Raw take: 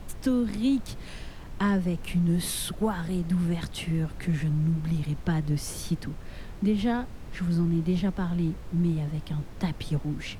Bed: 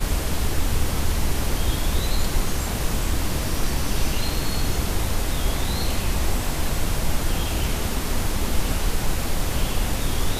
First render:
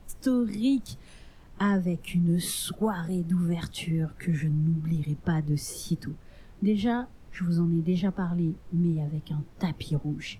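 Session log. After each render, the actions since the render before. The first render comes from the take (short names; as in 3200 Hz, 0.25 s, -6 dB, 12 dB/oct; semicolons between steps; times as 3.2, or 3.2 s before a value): noise print and reduce 10 dB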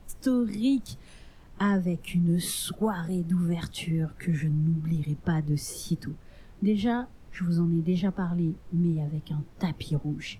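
nothing audible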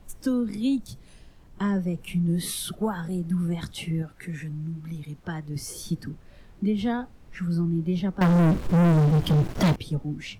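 0.76–1.76 bell 1800 Hz -4.5 dB 2.7 oct; 4.02–5.56 low shelf 440 Hz -8.5 dB; 8.21–9.76 sample leveller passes 5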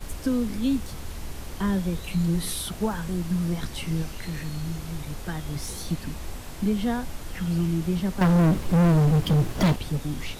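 add bed -13.5 dB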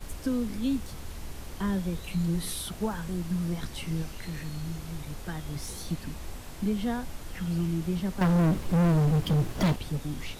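gain -4 dB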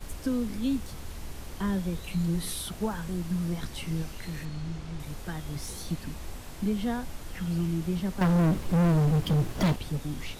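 4.45–5 air absorption 74 m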